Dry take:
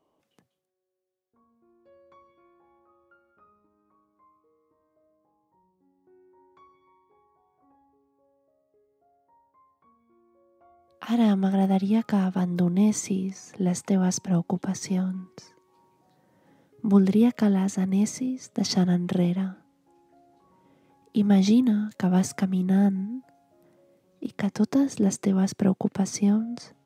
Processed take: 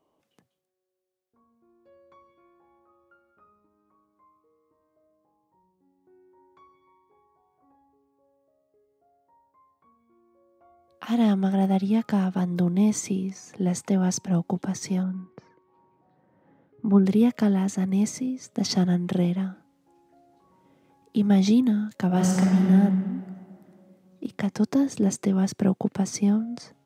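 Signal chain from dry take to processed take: 15.03–17.06 s: low-pass 1.9 kHz 12 dB/octave; 22.06–22.66 s: reverb throw, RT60 2.3 s, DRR -2 dB

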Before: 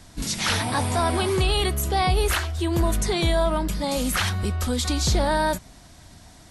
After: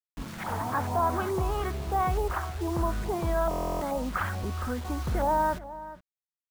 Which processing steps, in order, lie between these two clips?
LFO low-pass saw up 2.3 Hz 800–1600 Hz; word length cut 6-bit, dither none; echo from a far wall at 72 m, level -15 dB; buffer glitch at 3.49 s, samples 1024, times 13; trim -7.5 dB

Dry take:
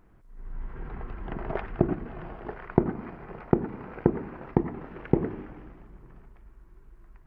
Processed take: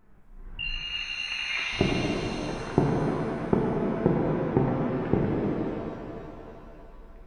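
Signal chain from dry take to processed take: flange 0.28 Hz, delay 4.5 ms, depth 5.6 ms, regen +57%; 0.59–1.73 s: frequency inversion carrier 2.8 kHz; pitch-shifted reverb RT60 2.8 s, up +7 st, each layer -8 dB, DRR -3.5 dB; trim +2 dB

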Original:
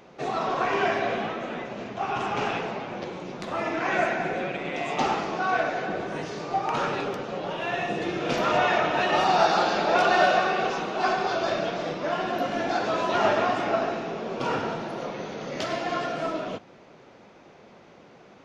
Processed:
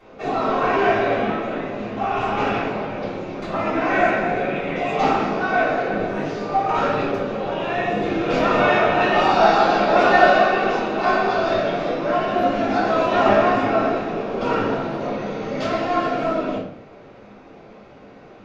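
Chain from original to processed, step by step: low-pass 3.3 kHz 6 dB/octave; simulated room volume 63 m³, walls mixed, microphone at 3.4 m; trim -8 dB

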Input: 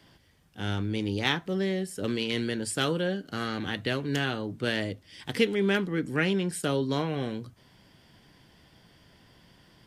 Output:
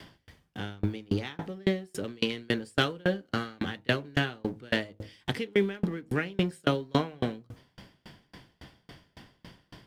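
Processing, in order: companding laws mixed up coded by mu; treble shelf 5.8 kHz -7.5 dB; de-hum 53.07 Hz, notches 18; sawtooth tremolo in dB decaying 3.6 Hz, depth 34 dB; trim +7 dB

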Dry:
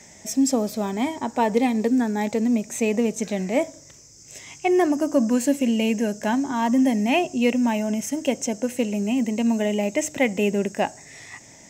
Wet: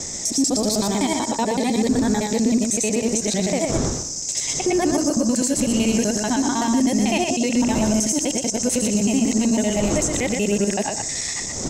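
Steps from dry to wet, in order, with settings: time reversed locally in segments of 63 ms; wind noise 380 Hz -36 dBFS; high-order bell 6.1 kHz +12.5 dB; compression, threshold -20 dBFS, peak gain reduction 10.5 dB; peak limiter -19.5 dBFS, peak gain reduction 10.5 dB; on a send: delay 121 ms -5.5 dB; on the sum: trim +7 dB

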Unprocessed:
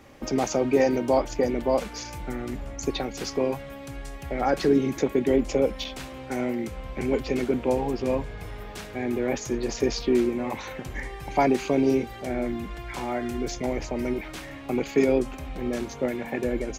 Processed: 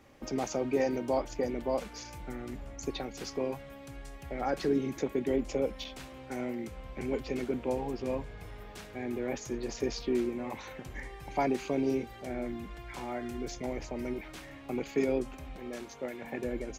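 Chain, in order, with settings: 15.56–16.22 s: bass shelf 280 Hz -10 dB; trim -8 dB

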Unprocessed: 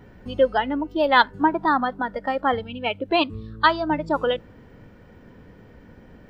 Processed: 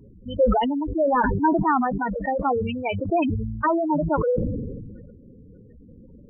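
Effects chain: wavefolder -11.5 dBFS; spectral gate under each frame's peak -10 dB strong; decay stretcher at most 32 dB/s

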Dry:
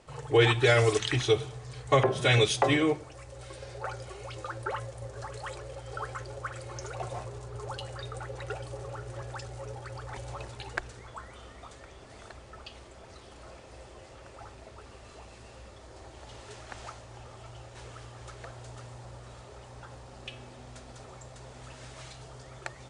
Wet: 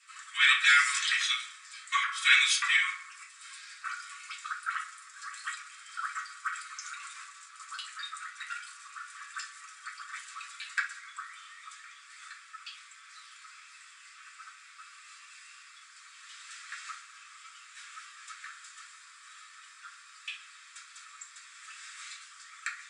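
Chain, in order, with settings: steep high-pass 1.2 kHz 72 dB/octave; filtered feedback delay 64 ms, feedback 80%, low-pass 2.1 kHz, level -12 dB; reverberation, pre-delay 3 ms, DRR -6.5 dB

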